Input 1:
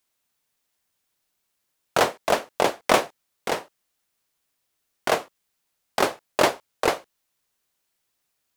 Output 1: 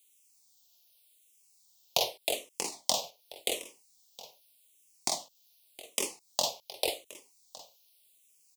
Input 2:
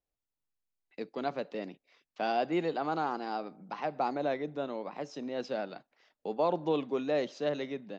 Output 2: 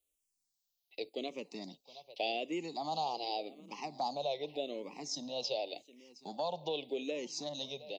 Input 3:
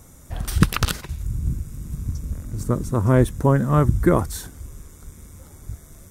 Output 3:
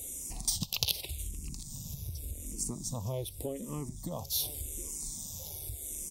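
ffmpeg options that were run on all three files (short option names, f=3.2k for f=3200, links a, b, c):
-filter_complex "[0:a]asuperstop=centerf=1500:order=4:qfactor=0.69,acompressor=threshold=-33dB:ratio=4,tiltshelf=f=860:g=-9,aecho=1:1:716:0.126,asplit=2[a][b];[b]afreqshift=-0.86[c];[a][c]amix=inputs=2:normalize=1,volume=5.5dB"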